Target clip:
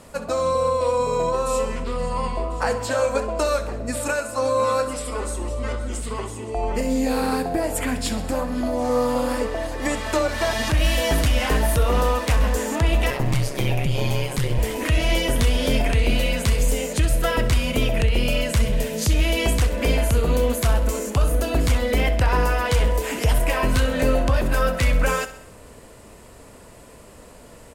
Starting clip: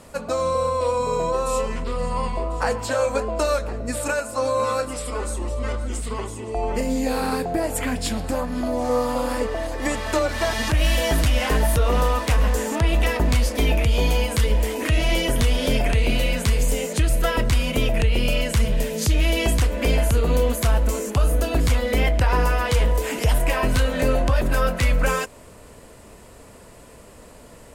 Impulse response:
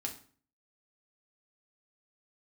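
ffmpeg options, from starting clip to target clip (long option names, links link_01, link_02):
-filter_complex "[0:a]asettb=1/sr,asplit=3[link_01][link_02][link_03];[link_01]atrim=end=13.104[link_04];[link_02]atrim=start=13.1:end=14.58,asetpts=PTS-STARTPTS,afade=type=in:duration=0.004:curve=qsin,afade=type=out:start_time=1.476:duration=0.004:curve=qsin,aeval=exprs='val(0)*sin(2*PI*67*n/s)':channel_layout=same[link_05];[link_03]atrim=start=14.576[link_06];[link_04][link_05]acrossfade=duration=0.004:curve1=hsin:curve2=qsin[link_07];[link_07][link_06]acrossfade=duration=0.004:curve1=qsin:curve2=hsin,aecho=1:1:65|130|195|260|325:0.211|0.112|0.0594|0.0315|0.0167"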